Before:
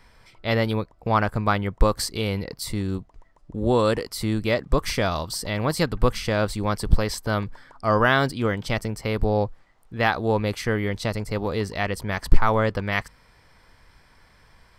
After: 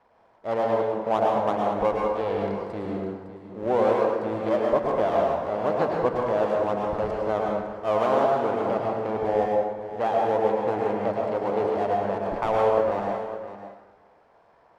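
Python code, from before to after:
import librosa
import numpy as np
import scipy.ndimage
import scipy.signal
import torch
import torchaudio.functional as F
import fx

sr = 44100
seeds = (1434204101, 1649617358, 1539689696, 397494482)

p1 = fx.dead_time(x, sr, dead_ms=0.27)
p2 = fx.rider(p1, sr, range_db=10, speed_s=0.5)
p3 = p1 + (p2 * 10.0 ** (-1.5 / 20.0))
p4 = fx.bandpass_q(p3, sr, hz=670.0, q=1.8)
p5 = p4 + fx.echo_single(p4, sr, ms=558, db=-12.5, dry=0)
p6 = fx.rev_plate(p5, sr, seeds[0], rt60_s=1.3, hf_ratio=0.6, predelay_ms=90, drr_db=-1.5)
y = p6 * 10.0 ** (-2.0 / 20.0)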